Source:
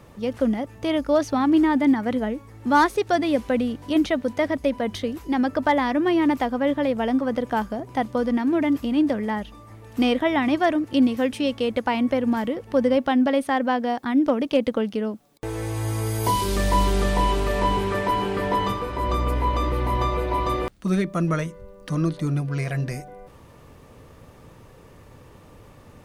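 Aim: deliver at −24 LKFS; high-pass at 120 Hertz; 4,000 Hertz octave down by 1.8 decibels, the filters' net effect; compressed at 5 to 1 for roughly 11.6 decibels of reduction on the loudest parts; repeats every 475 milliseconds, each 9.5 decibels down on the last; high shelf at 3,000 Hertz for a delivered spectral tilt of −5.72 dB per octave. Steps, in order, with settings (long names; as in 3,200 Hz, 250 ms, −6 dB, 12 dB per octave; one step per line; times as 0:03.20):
high-pass filter 120 Hz
high-shelf EQ 3,000 Hz +4.5 dB
parametric band 4,000 Hz −6 dB
downward compressor 5 to 1, threshold −28 dBFS
repeating echo 475 ms, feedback 33%, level −9.5 dB
level +7.5 dB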